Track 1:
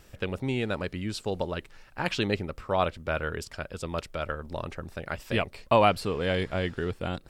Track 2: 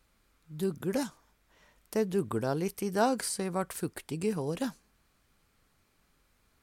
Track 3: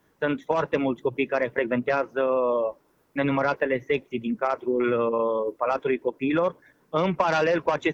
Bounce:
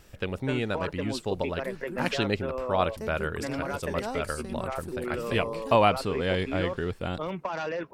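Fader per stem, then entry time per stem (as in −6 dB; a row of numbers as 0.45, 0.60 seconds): 0.0, −8.5, −10.0 decibels; 0.00, 1.05, 0.25 seconds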